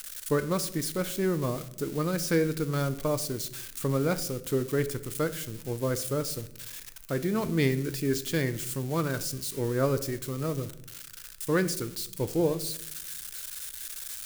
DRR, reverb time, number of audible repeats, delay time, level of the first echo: 11.0 dB, 0.75 s, no echo, no echo, no echo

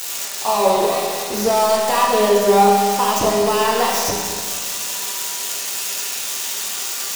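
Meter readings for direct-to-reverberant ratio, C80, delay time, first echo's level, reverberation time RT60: -5.5 dB, 1.0 dB, no echo, no echo, 2.0 s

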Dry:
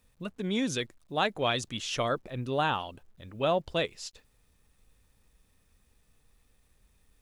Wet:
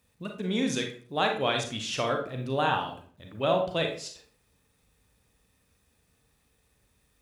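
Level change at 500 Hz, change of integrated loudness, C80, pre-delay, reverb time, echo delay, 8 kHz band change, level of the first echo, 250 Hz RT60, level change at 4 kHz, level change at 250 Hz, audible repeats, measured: +2.0 dB, +2.0 dB, 11.5 dB, 32 ms, 0.50 s, no echo, +1.5 dB, no echo, 0.55 s, +1.5 dB, +2.0 dB, no echo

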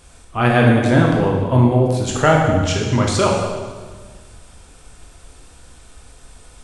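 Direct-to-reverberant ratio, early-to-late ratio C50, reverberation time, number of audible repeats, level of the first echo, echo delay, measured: -1.5 dB, 2.0 dB, 1.5 s, no echo, no echo, no echo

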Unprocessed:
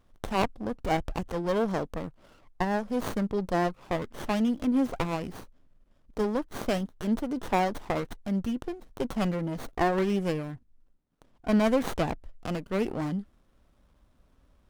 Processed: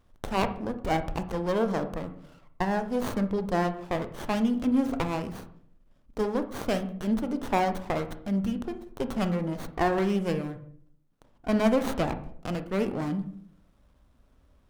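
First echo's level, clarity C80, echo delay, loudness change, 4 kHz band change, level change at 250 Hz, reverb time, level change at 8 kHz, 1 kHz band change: no echo, 16.0 dB, no echo, +0.5 dB, 0.0 dB, +1.0 dB, 0.60 s, 0.0 dB, +0.5 dB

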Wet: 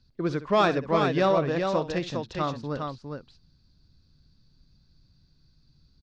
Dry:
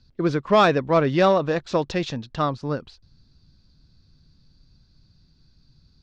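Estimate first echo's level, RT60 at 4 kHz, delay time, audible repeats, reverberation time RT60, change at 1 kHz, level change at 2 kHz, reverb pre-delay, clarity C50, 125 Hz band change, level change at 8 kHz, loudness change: -14.5 dB, no reverb, 64 ms, 2, no reverb, -4.0 dB, -4.5 dB, no reverb, no reverb, -4.5 dB, no reading, -4.5 dB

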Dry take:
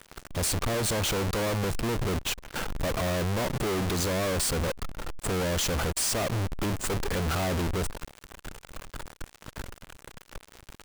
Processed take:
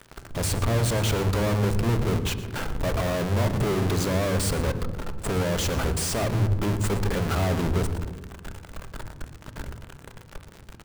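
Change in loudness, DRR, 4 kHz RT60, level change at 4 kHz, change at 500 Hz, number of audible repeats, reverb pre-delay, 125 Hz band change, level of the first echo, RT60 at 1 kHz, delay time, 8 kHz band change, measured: +3.0 dB, 9.0 dB, 0.85 s, -0.5 dB, +3.0 dB, 1, 3 ms, +7.0 dB, -15.5 dB, 1.1 s, 116 ms, -1.5 dB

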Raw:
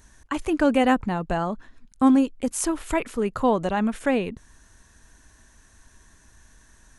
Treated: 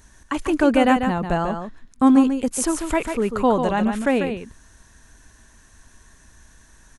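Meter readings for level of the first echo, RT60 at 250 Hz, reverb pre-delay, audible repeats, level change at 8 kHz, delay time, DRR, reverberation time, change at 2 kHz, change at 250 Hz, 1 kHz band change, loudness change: -7.0 dB, no reverb, no reverb, 1, +3.5 dB, 144 ms, no reverb, no reverb, +3.5 dB, +3.5 dB, +3.5 dB, +3.5 dB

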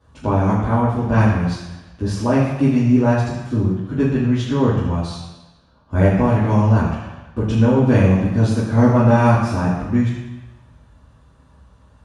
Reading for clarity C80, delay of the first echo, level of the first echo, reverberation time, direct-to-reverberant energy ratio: 4.0 dB, no echo, no echo, 1.1 s, -9.5 dB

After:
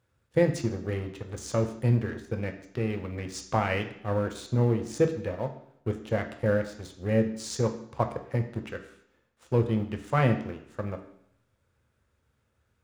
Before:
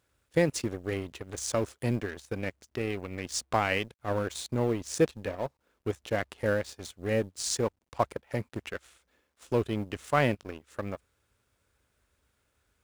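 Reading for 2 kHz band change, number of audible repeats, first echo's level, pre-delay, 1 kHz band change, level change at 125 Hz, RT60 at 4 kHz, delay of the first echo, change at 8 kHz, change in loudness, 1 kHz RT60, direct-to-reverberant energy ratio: -1.5 dB, no echo, no echo, 3 ms, 0.0 dB, +7.0 dB, 0.70 s, no echo, -6.0 dB, +2.5 dB, 0.70 s, 5.0 dB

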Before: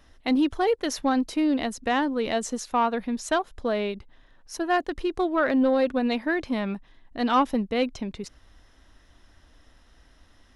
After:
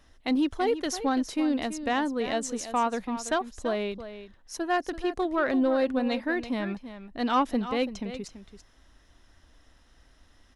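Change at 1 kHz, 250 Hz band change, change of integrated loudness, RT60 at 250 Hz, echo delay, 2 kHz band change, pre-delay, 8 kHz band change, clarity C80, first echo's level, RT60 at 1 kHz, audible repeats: -2.5 dB, -2.5 dB, -2.5 dB, no reverb, 334 ms, -2.5 dB, no reverb, -0.5 dB, no reverb, -12.0 dB, no reverb, 1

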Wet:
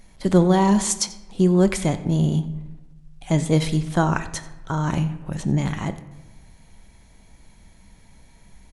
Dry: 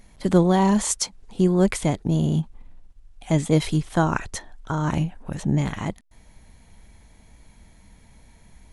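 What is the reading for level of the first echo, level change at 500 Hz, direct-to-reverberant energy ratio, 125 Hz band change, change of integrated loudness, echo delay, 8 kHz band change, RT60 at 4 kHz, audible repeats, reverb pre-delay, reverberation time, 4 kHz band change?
-21.0 dB, +1.0 dB, 10.0 dB, +1.5 dB, +1.0 dB, 90 ms, +1.5 dB, 0.65 s, 1, 5 ms, 1.1 s, +2.0 dB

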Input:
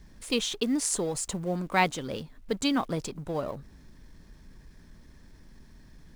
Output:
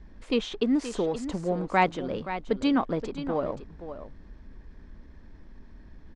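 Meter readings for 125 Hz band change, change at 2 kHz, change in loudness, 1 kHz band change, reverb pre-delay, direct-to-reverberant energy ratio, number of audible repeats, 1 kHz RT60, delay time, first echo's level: 0.0 dB, -0.5 dB, +1.5 dB, +3.0 dB, no reverb, no reverb, 1, no reverb, 525 ms, -11.0 dB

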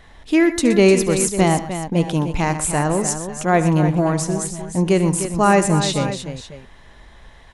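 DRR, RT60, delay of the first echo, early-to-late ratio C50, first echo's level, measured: no reverb, no reverb, 70 ms, no reverb, -16.0 dB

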